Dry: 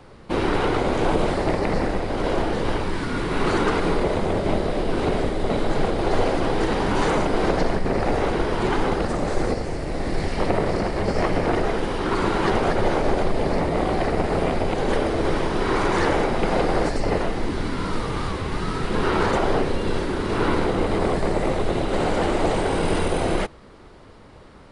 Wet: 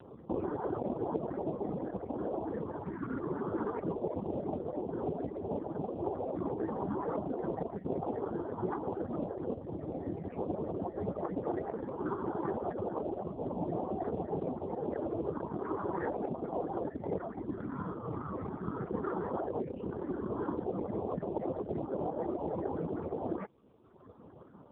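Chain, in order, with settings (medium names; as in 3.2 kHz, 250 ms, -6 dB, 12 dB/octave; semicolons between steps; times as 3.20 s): median filter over 9 samples; reverb removal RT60 1.2 s; compression 2.5:1, threshold -32 dBFS, peak gain reduction 11 dB; loudest bins only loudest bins 32; 17.75–19.47 s: whistle 640 Hz -55 dBFS; AMR-NB 4.75 kbps 8 kHz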